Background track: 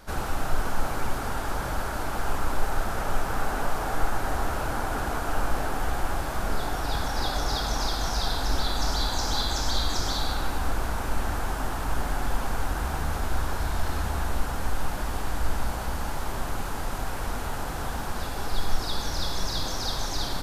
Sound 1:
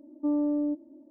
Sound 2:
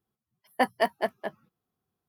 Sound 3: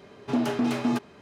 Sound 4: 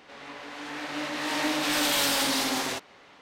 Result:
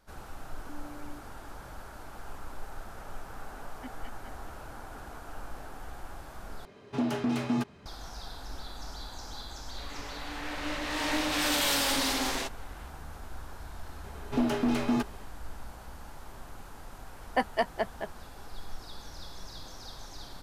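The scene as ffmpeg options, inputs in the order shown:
ffmpeg -i bed.wav -i cue0.wav -i cue1.wav -i cue2.wav -i cue3.wav -filter_complex "[2:a]asplit=2[link_01][link_02];[3:a]asplit=2[link_03][link_04];[0:a]volume=-15.5dB[link_05];[1:a]acompressor=threshold=-38dB:ratio=6:attack=3.2:release=140:knee=1:detection=peak[link_06];[link_01]asplit=3[link_07][link_08][link_09];[link_07]bandpass=frequency=270:width_type=q:width=8,volume=0dB[link_10];[link_08]bandpass=frequency=2290:width_type=q:width=8,volume=-6dB[link_11];[link_09]bandpass=frequency=3010:width_type=q:width=8,volume=-9dB[link_12];[link_10][link_11][link_12]amix=inputs=3:normalize=0[link_13];[link_03]asubboost=boost=6:cutoff=190[link_14];[link_02]aresample=22050,aresample=44100[link_15];[link_05]asplit=2[link_16][link_17];[link_16]atrim=end=6.654[link_18];[link_14]atrim=end=1.21,asetpts=PTS-STARTPTS,volume=-4dB[link_19];[link_17]atrim=start=7.856[link_20];[link_06]atrim=end=1.1,asetpts=PTS-STARTPTS,volume=-8.5dB,afade=type=in:duration=0.004:curve=hsin,afade=type=out:start_time=1.096:duration=0.004:curve=hsin,adelay=460[link_21];[link_13]atrim=end=2.08,asetpts=PTS-STARTPTS,volume=-9.5dB,afade=type=in:duration=0.004:curve=hsin,afade=type=out:start_time=2.076:duration=0.004:curve=hsin,adelay=3230[link_22];[4:a]atrim=end=3.21,asetpts=PTS-STARTPTS,volume=-2.5dB,afade=type=in:duration=0.004:curve=hsin,afade=type=out:start_time=3.206:duration=0.004:curve=hsin,adelay=9690[link_23];[link_04]atrim=end=1.21,asetpts=PTS-STARTPTS,volume=-2dB,afade=type=in:duration=0.004:curve=hsin,afade=type=out:start_time=1.206:duration=0.004:curve=hsin,adelay=14040[link_24];[link_15]atrim=end=2.08,asetpts=PTS-STARTPTS,volume=-3dB,afade=type=in:duration=0.004:curve=hsin,afade=type=out:start_time=2.076:duration=0.004:curve=hsin,adelay=16770[link_25];[link_18][link_19]acrossfade=duration=0.004:curve1=hsin:curve2=hsin[link_26];[link_26][link_20]acrossfade=duration=0.004:curve1=hsin:curve2=hsin[link_27];[link_27][link_21][link_22][link_23][link_24][link_25]amix=inputs=6:normalize=0" out.wav

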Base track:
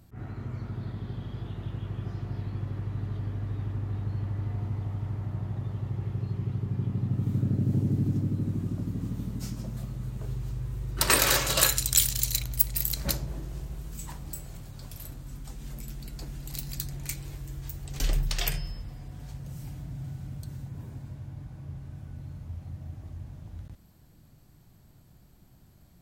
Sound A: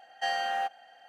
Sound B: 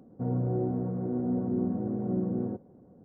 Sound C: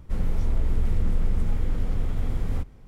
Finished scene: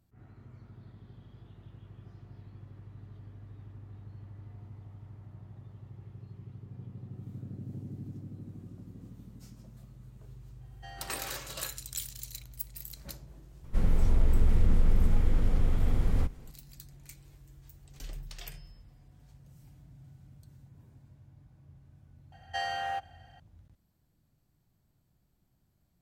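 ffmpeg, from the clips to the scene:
ffmpeg -i bed.wav -i cue0.wav -i cue1.wav -i cue2.wav -filter_complex "[1:a]asplit=2[link_01][link_02];[0:a]volume=-15.5dB[link_03];[2:a]acompressor=threshold=-42dB:ratio=6:attack=3.2:release=140:knee=1:detection=peak[link_04];[link_01]asoftclip=type=tanh:threshold=-21dB[link_05];[link_04]atrim=end=3.04,asetpts=PTS-STARTPTS,volume=-16dB,afade=type=in:duration=0.004:curve=hsin,afade=type=out:start_time=3.036:duration=0.004:curve=hsin,adelay=6530[link_06];[link_05]atrim=end=1.08,asetpts=PTS-STARTPTS,volume=-17.5dB,afade=type=in:duration=0.004:curve=hsin,afade=type=out:start_time=1.076:duration=0.004:curve=hsin,adelay=10610[link_07];[3:a]atrim=end=2.87,asetpts=PTS-STARTPTS,afade=type=in:duration=0.004:curve=hsin,afade=type=out:start_time=2.866:duration=0.004:curve=hsin,adelay=601524S[link_08];[link_02]atrim=end=1.08,asetpts=PTS-STARTPTS,volume=-3.5dB,afade=type=in:duration=0.004:curve=hsin,afade=type=out:start_time=1.076:duration=0.004:curve=hsin,adelay=22320[link_09];[link_03][link_06][link_07][link_08][link_09]amix=inputs=5:normalize=0" out.wav

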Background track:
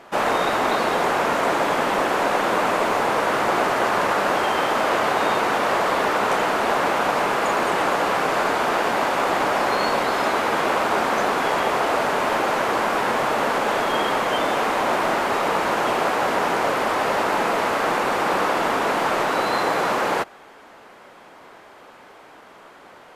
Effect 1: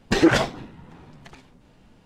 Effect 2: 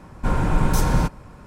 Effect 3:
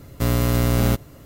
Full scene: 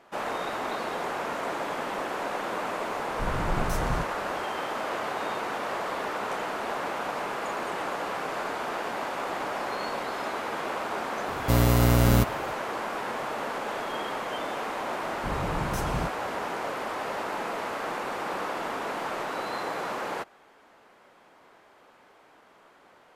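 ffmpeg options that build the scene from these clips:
ffmpeg -i bed.wav -i cue0.wav -i cue1.wav -i cue2.wav -filter_complex "[2:a]asplit=2[link_01][link_02];[0:a]volume=-11dB[link_03];[link_02]highpass=41[link_04];[link_01]atrim=end=1.46,asetpts=PTS-STARTPTS,volume=-10.5dB,afade=type=in:duration=0.004:curve=hsin,afade=type=out:start_time=1.456:duration=0.004:curve=hsin,adelay=2960[link_05];[3:a]atrim=end=1.25,asetpts=PTS-STARTPTS,volume=-1.5dB,afade=type=in:duration=0.004:curve=hsin,afade=type=out:start_time=1.246:duration=0.004:curve=hsin,adelay=11280[link_06];[link_04]atrim=end=1.46,asetpts=PTS-STARTPTS,volume=-10.5dB,afade=type=in:duration=0.004:curve=hsin,afade=type=out:start_time=1.456:duration=0.004:curve=hsin,adelay=15000[link_07];[link_03][link_05][link_06][link_07]amix=inputs=4:normalize=0" out.wav

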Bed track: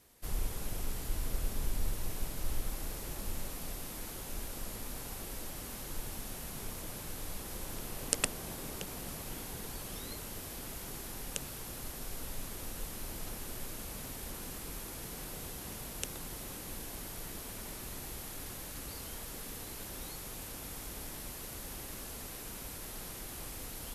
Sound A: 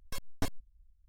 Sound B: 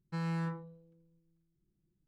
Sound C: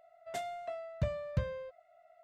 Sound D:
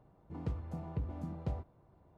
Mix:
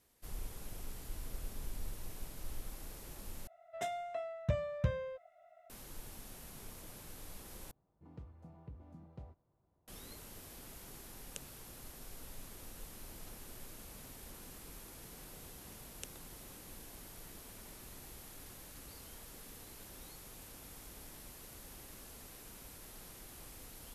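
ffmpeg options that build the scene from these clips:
ffmpeg -i bed.wav -i cue0.wav -i cue1.wav -i cue2.wav -i cue3.wav -filter_complex "[0:a]volume=-8.5dB[link_01];[3:a]asuperstop=centerf=4500:order=4:qfactor=6.6[link_02];[link_01]asplit=3[link_03][link_04][link_05];[link_03]atrim=end=3.474[link_06];[link_02]atrim=end=2.23[link_07];[link_04]atrim=start=5.696:end=7.714[link_08];[4:a]atrim=end=2.17,asetpts=PTS-STARTPTS,volume=-13.5dB[link_09];[link_05]atrim=start=9.876[link_10];[link_06][link_07]acrossfade=duration=0.004:curve1=hsin:curve2=hsin[link_11];[link_11][link_08]acrossfade=duration=0.004:curve1=hsin:curve2=hsin[link_12];[link_12][link_09]acrossfade=duration=0.004:curve1=hsin:curve2=hsin[link_13];[link_13][link_10]acrossfade=duration=0.004:curve1=hsin:curve2=hsin" out.wav

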